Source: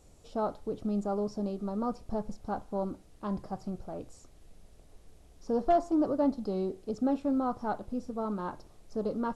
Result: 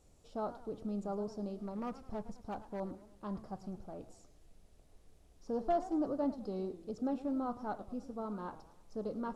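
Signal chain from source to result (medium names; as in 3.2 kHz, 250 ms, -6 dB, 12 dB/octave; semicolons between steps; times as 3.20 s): 1.50–2.80 s: overload inside the chain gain 28.5 dB; modulated delay 105 ms, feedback 49%, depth 187 cents, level -15.5 dB; trim -7 dB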